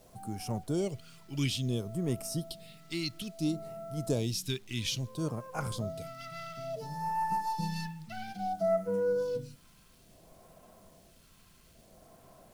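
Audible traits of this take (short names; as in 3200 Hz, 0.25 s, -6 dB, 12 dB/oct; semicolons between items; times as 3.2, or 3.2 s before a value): phasing stages 2, 0.59 Hz, lowest notch 580–3600 Hz; a quantiser's noise floor 10-bit, dither none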